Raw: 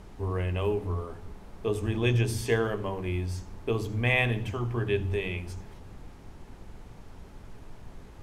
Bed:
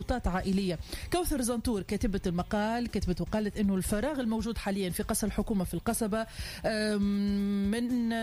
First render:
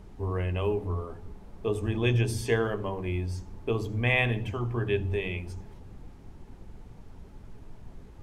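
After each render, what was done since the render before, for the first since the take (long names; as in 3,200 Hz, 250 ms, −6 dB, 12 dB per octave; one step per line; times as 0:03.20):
broadband denoise 6 dB, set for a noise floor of −48 dBFS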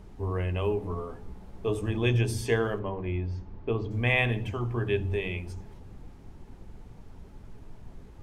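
0:00.82–0:01.90: double-tracking delay 16 ms −5.5 dB
0:02.79–0:03.91: high-frequency loss of the air 230 metres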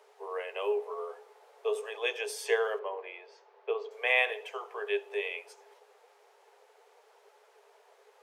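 Chebyshev high-pass filter 410 Hz, order 8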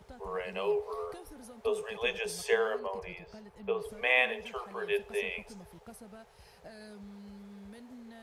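mix in bed −20 dB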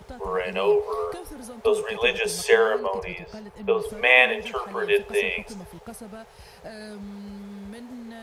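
level +10 dB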